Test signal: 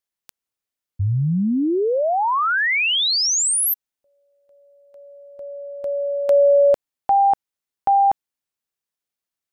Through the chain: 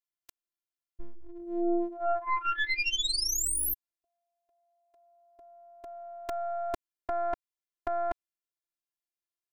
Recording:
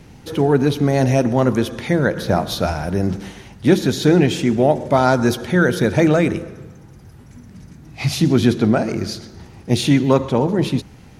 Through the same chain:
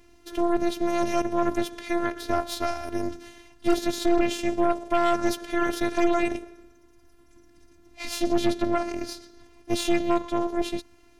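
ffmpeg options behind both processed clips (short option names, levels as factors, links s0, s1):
-af "afftfilt=real='hypot(re,im)*cos(PI*b)':imag='0':win_size=512:overlap=0.75,aeval=exprs='0.668*(cos(1*acos(clip(val(0)/0.668,-1,1)))-cos(1*PI/2))+0.133*(cos(6*acos(clip(val(0)/0.668,-1,1)))-cos(6*PI/2))':c=same,volume=0.422"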